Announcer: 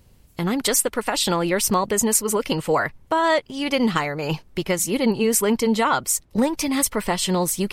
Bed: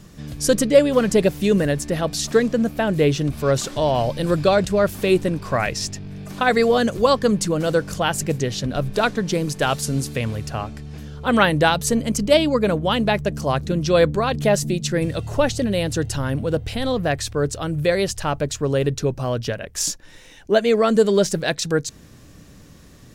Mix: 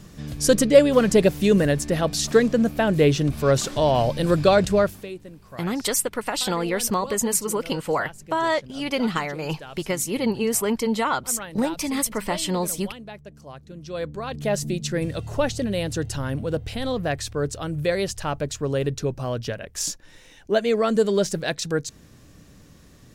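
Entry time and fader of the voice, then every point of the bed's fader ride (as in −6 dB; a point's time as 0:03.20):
5.20 s, −3.5 dB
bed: 0:04.79 0 dB
0:05.14 −20 dB
0:13.65 −20 dB
0:14.64 −4 dB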